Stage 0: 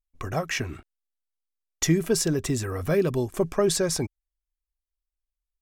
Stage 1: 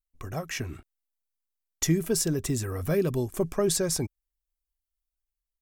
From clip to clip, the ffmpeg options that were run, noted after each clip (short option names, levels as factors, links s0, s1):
-af "highshelf=f=7800:g=11,dynaudnorm=f=240:g=5:m=1.58,lowshelf=f=360:g=5,volume=0.355"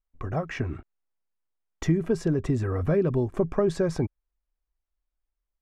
-af "lowpass=1500,acompressor=threshold=0.0447:ratio=2,crystalizer=i=1.5:c=0,volume=1.88"